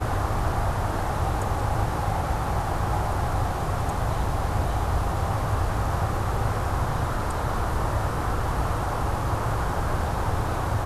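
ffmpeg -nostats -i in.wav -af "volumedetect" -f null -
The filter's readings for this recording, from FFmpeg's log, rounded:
mean_volume: -24.8 dB
max_volume: -11.7 dB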